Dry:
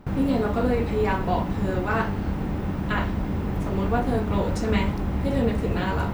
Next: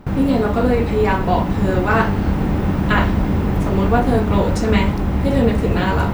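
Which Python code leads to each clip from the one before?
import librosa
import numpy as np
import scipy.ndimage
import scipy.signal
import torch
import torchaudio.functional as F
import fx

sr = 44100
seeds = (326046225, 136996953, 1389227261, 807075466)

y = fx.rider(x, sr, range_db=10, speed_s=2.0)
y = y * 10.0 ** (7.5 / 20.0)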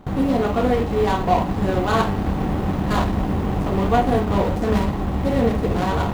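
y = scipy.signal.medfilt(x, 25)
y = fx.low_shelf(y, sr, hz=370.0, db=-5.0)
y = fx.small_body(y, sr, hz=(750.0, 1100.0, 1900.0), ring_ms=45, db=6)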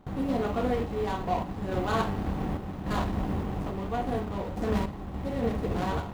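y = fx.tremolo_random(x, sr, seeds[0], hz=3.5, depth_pct=55)
y = y * 10.0 ** (-8.0 / 20.0)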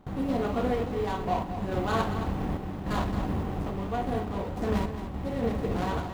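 y = x + 10.0 ** (-10.5 / 20.0) * np.pad(x, (int(222 * sr / 1000.0), 0))[:len(x)]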